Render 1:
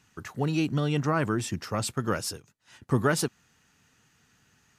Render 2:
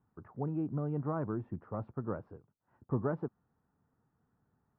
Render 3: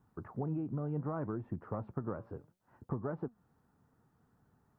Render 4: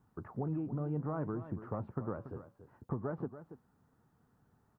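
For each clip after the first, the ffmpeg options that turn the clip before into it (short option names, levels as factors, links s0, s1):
-af "lowpass=f=1100:w=0.5412,lowpass=f=1100:w=1.3066,volume=0.398"
-af "acompressor=threshold=0.0112:ratio=10,flanger=delay=0.5:depth=8.6:regen=87:speed=0.67:shape=triangular,volume=3.35"
-af "aecho=1:1:283:0.237"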